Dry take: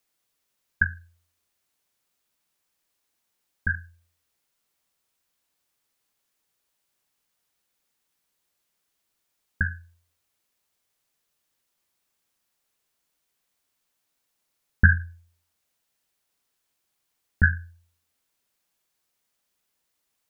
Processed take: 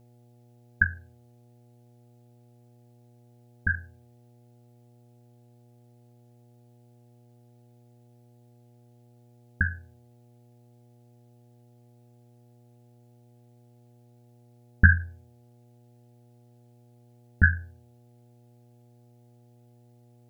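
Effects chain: buzz 120 Hz, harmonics 7, -57 dBFS -7 dB/oct

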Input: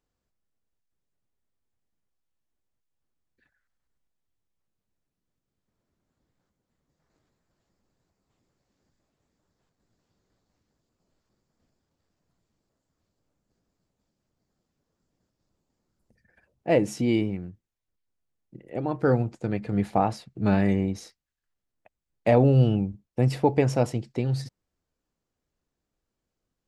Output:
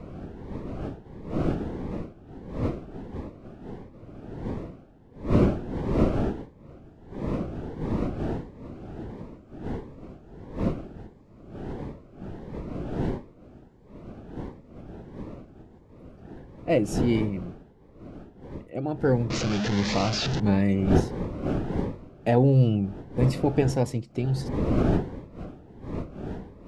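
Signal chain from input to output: 19.3–20.4 delta modulation 32 kbps, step -20 dBFS; wind noise 380 Hz -31 dBFS; cascading phaser rising 1.5 Hz

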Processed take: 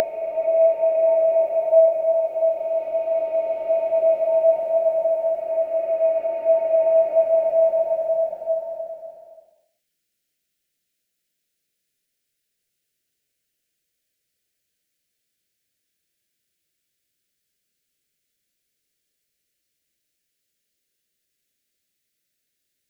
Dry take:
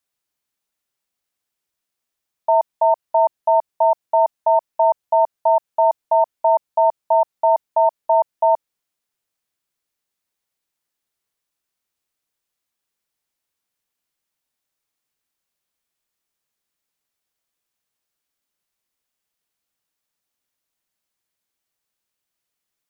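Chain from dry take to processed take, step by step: gate -17 dBFS, range -17 dB; in parallel at +2 dB: negative-ratio compressor -23 dBFS, ratio -0.5; on the sum: Paulstretch 8.8×, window 0.50 s, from 7.69; Butterworth band-stop 980 Hz, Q 0.93; gain +5.5 dB

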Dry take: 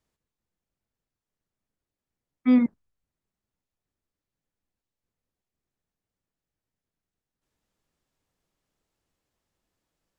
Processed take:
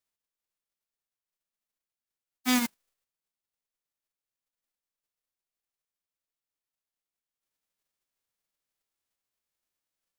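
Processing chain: spectral whitening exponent 0.1; gain -7 dB

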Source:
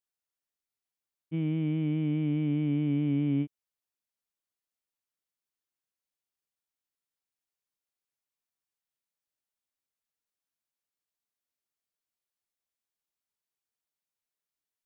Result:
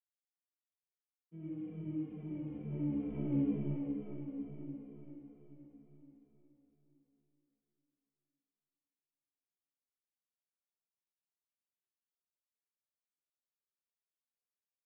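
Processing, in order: octaver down 2 oct, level -4 dB; HPF 170 Hz 12 dB/oct; gate -26 dBFS, range -21 dB; LPF 1600 Hz 12 dB/oct; comb 5.6 ms, depth 35%; small resonant body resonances 240/420 Hz, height 7 dB; on a send: feedback echo 0.511 s, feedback 55%, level -15.5 dB; on the sum: digital reverb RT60 4.6 s, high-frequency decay 0.75×, pre-delay 10 ms, DRR -7.5 dB; endless flanger 2.6 ms -2.2 Hz; gain +3 dB

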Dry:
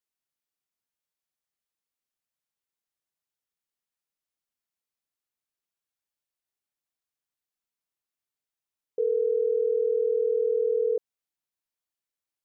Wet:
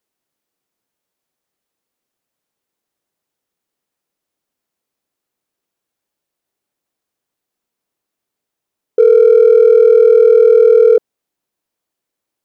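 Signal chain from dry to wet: bell 350 Hz +10 dB 2.9 oct; in parallel at -10 dB: hard clip -17 dBFS, distortion -10 dB; on the sum: gain +6.5 dB

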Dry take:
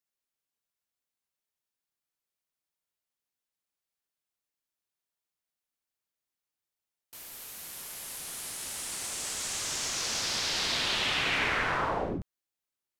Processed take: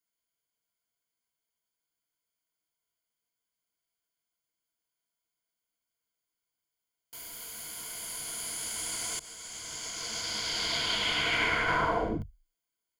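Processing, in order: 9.19–11.68 expander -26 dBFS; ripple EQ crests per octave 1.8, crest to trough 12 dB

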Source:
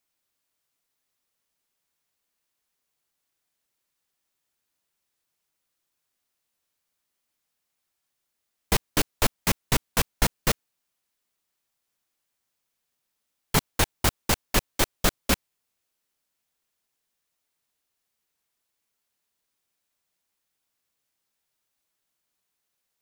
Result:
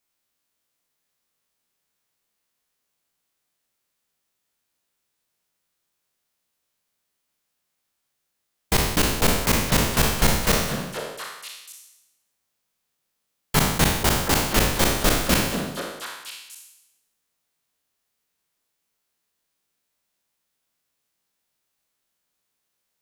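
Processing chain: spectral trails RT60 0.90 s; delay with a stepping band-pass 0.241 s, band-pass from 190 Hz, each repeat 1.4 oct, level -1.5 dB

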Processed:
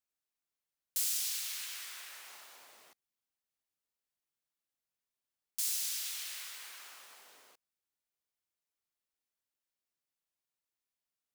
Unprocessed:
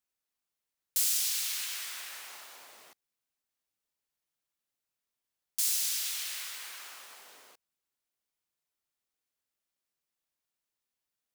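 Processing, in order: 1.37–2.26 Chebyshev high-pass 230 Hz, order 10; gain -5 dB

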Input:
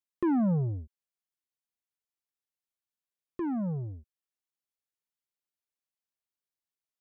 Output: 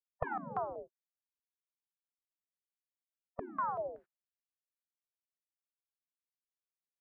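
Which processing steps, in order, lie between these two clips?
spectral gate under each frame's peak -25 dB weak; stepped low-pass 5.3 Hz 300–1600 Hz; gain +14 dB

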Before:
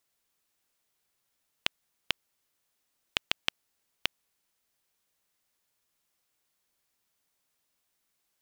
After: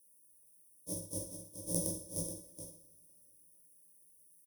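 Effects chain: spectral trails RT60 0.76 s; HPF 65 Hz; resonant high shelf 3100 Hz +8 dB, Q 3; granular stretch 0.53×, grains 0.122 s; ripple EQ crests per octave 1.2, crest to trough 17 dB; transient shaper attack -6 dB, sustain +2 dB; Chebyshev band-stop 500–9000 Hz, order 3; on a send: echo 0.425 s -8 dB; on the sum: two-slope reverb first 0.68 s, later 3.3 s, from -17 dB, DRR 9 dB; gain +3 dB

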